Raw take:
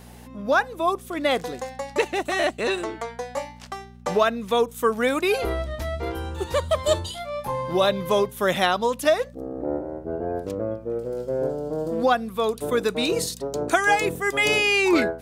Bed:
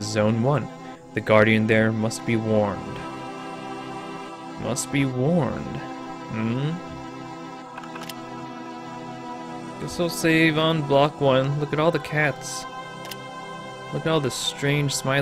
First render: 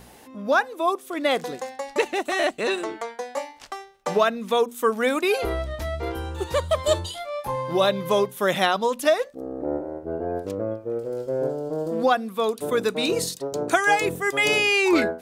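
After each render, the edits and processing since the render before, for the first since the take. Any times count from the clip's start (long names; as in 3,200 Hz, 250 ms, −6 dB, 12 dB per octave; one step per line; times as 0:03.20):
hum removal 60 Hz, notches 4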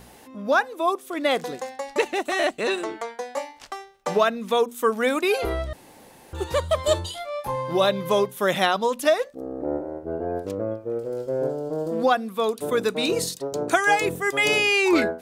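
0:05.73–0:06.33: fill with room tone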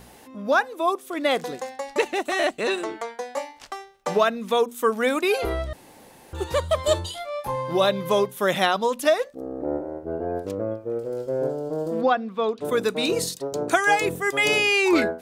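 0:12.01–0:12.65: high-frequency loss of the air 170 metres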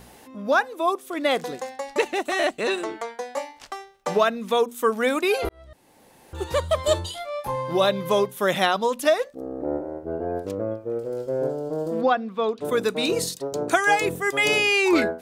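0:05.49–0:06.55: fade in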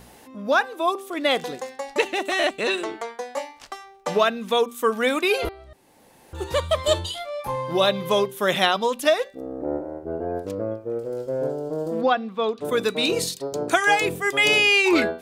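dynamic equaliser 3,100 Hz, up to +5 dB, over −41 dBFS, Q 1.4
hum removal 390.8 Hz, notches 13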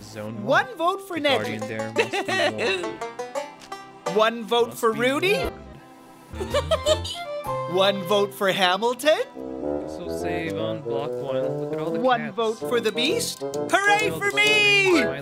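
mix in bed −13 dB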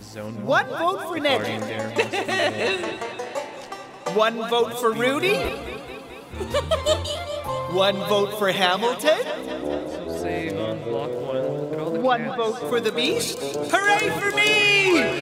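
single-tap delay 183 ms −18 dB
feedback echo with a swinging delay time 217 ms, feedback 69%, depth 81 cents, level −13 dB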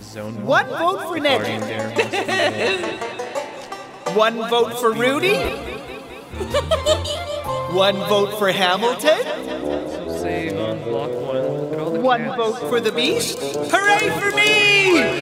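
level +3.5 dB
brickwall limiter −3 dBFS, peak gain reduction 2 dB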